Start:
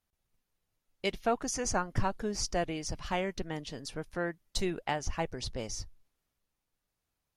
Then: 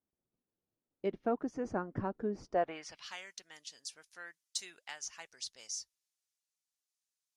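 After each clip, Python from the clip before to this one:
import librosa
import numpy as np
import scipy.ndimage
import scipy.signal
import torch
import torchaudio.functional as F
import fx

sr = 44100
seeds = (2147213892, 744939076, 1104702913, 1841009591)

y = fx.dynamic_eq(x, sr, hz=1500.0, q=1.4, threshold_db=-49.0, ratio=4.0, max_db=6)
y = fx.filter_sweep_bandpass(y, sr, from_hz=310.0, to_hz=6900.0, start_s=2.44, end_s=3.16, q=1.3)
y = F.gain(torch.from_numpy(y), 1.5).numpy()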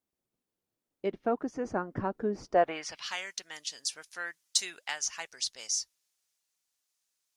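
y = fx.low_shelf(x, sr, hz=360.0, db=-4.5)
y = fx.rider(y, sr, range_db=4, speed_s=2.0)
y = F.gain(torch.from_numpy(y), 8.0).numpy()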